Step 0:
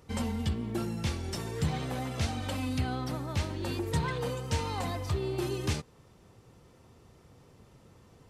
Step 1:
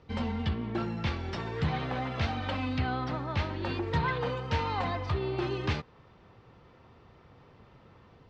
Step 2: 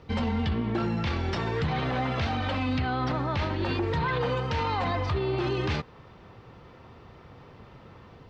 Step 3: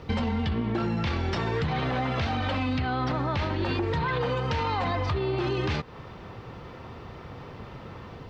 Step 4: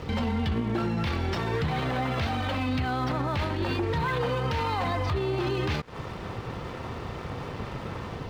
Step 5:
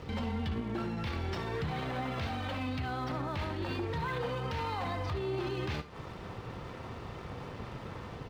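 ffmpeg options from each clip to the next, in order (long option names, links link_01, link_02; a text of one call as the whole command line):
ffmpeg -i in.wav -filter_complex "[0:a]lowpass=frequency=4400:width=0.5412,lowpass=frequency=4400:width=1.3066,acrossover=split=750|2300[link_01][link_02][link_03];[link_02]dynaudnorm=framelen=110:gausssize=5:maxgain=6.5dB[link_04];[link_01][link_04][link_03]amix=inputs=3:normalize=0" out.wav
ffmpeg -i in.wav -af "alimiter=level_in=3dB:limit=-24dB:level=0:latency=1:release=20,volume=-3dB,volume=7dB" out.wav
ffmpeg -i in.wav -af "acompressor=threshold=-33dB:ratio=4,volume=7.5dB" out.wav
ffmpeg -i in.wav -af "alimiter=level_in=3.5dB:limit=-24dB:level=0:latency=1:release=181,volume=-3.5dB,aeval=exprs='sgn(val(0))*max(abs(val(0))-0.002,0)':channel_layout=same,volume=8dB" out.wav
ffmpeg -i in.wav -af "aecho=1:1:57|73:0.188|0.2,volume=-7.5dB" out.wav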